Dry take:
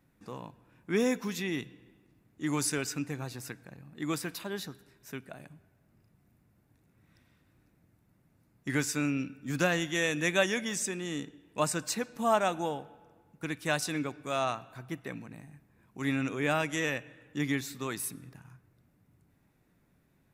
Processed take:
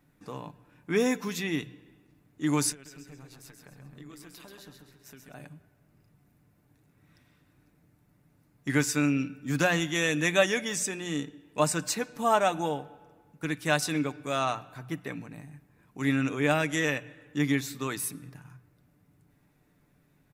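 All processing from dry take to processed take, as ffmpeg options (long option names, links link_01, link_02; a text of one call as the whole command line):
ffmpeg -i in.wav -filter_complex "[0:a]asettb=1/sr,asplit=3[link_01][link_02][link_03];[link_01]atrim=end=2.724[link_04];[link_02]atrim=start=2.72:end=5.34,asetpts=PTS-STARTPTS,afade=type=in:duration=0.004:curve=qsin,afade=type=out:start_time=2.616:duration=0.004:curve=qsin,acompressor=threshold=-46dB:ratio=12:attack=3.2:release=140:knee=1:detection=peak,tremolo=f=130:d=0.571,aecho=1:1:133|266|399|532|665:0.562|0.214|0.0812|0.0309|0.0117,atrim=end_sample=115542[link_05];[link_03]atrim=start=5.336[link_06];[link_04][link_05]acrossfade=duration=0.004:curve1=hsin:curve2=qsin[link_07];[link_07][link_06]acrossfade=duration=0.004:curve1=qsin:curve2=hsin,bandreject=frequency=60:width_type=h:width=6,bandreject=frequency=120:width_type=h:width=6,bandreject=frequency=180:width_type=h:width=6,aecho=1:1:6.8:0.35,volume=2.5dB" out.wav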